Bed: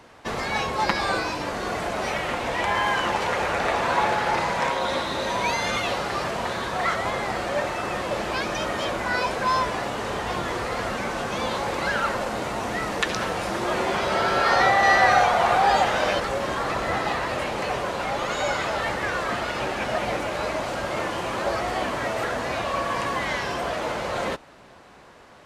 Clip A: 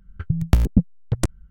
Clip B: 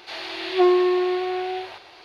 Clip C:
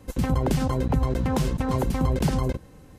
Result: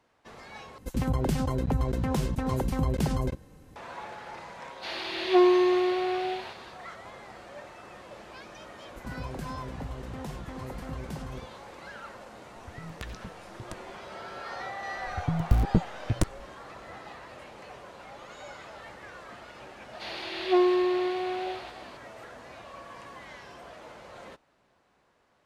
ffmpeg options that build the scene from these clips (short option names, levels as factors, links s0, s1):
-filter_complex "[3:a]asplit=2[s0][s1];[2:a]asplit=2[s2][s3];[1:a]asplit=2[s4][s5];[0:a]volume=0.112[s6];[s4]acompressor=threshold=0.0708:ratio=6:attack=3.2:release=140:knee=1:detection=peak[s7];[s5]aeval=exprs='clip(val(0),-1,0.106)':c=same[s8];[s6]asplit=2[s9][s10];[s9]atrim=end=0.784[s11];[s0]atrim=end=2.98,asetpts=PTS-STARTPTS,volume=0.631[s12];[s10]atrim=start=3.756[s13];[s2]atrim=end=2.04,asetpts=PTS-STARTPTS,volume=0.75,afade=t=in:d=0.1,afade=t=out:st=1.94:d=0.1,adelay=4750[s14];[s1]atrim=end=2.98,asetpts=PTS-STARTPTS,volume=0.178,afade=t=in:d=0.004:c=hsin,afade=t=out:st=2.976:d=0.004:c=hsin,adelay=8880[s15];[s7]atrim=end=1.5,asetpts=PTS-STARTPTS,volume=0.188,afade=t=in:d=0.004:c=hsin,afade=t=out:st=1.496:d=0.004:c=hsin,adelay=12480[s16];[s8]atrim=end=1.5,asetpts=PTS-STARTPTS,volume=0.668,afade=t=in:d=0.004:c=hsin,afade=t=out:st=1.496:d=0.004:c=hsin,adelay=14980[s17];[s3]atrim=end=2.04,asetpts=PTS-STARTPTS,volume=0.562,afade=t=in:d=0.004:c=hsin,afade=t=out:st=2.036:d=0.004:c=hsin,adelay=19930[s18];[s11][s12]acrossfade=d=0.004:c1=hsin:c2=hsin[s19];[s19][s13]acrossfade=d=0.004:c1=hsin:c2=hsin[s20];[s20][s14][s15][s16][s17][s18]amix=inputs=6:normalize=0"